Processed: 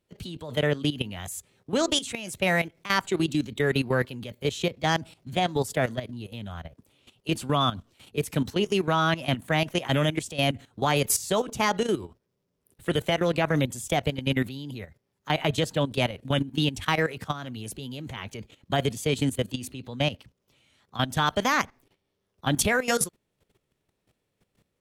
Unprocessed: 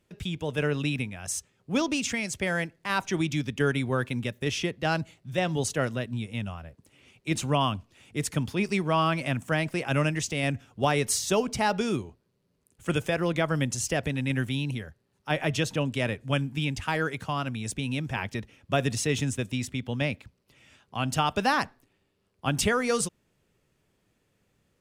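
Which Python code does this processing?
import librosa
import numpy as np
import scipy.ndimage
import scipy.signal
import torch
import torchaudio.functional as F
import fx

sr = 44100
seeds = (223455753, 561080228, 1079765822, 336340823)

y = fx.formant_shift(x, sr, semitones=3)
y = fx.level_steps(y, sr, step_db=14)
y = y * 10.0 ** (5.5 / 20.0)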